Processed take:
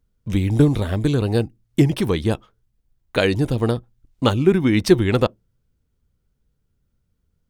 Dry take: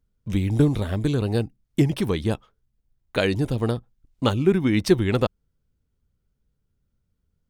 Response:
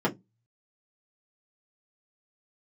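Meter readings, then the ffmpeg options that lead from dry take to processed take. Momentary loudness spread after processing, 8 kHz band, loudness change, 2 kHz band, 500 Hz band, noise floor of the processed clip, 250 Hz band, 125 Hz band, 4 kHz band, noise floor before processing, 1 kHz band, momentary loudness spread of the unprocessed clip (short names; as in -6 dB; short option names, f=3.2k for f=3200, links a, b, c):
8 LU, +3.5 dB, +3.5 dB, +3.5 dB, +4.0 dB, -71 dBFS, +3.5 dB, +3.5 dB, +3.5 dB, -75 dBFS, +4.0 dB, 8 LU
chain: -filter_complex "[0:a]asplit=2[a][b];[1:a]atrim=start_sample=2205,lowshelf=f=230:g=-9.5[c];[b][c]afir=irnorm=-1:irlink=0,volume=-33.5dB[d];[a][d]amix=inputs=2:normalize=0,volume=3.5dB"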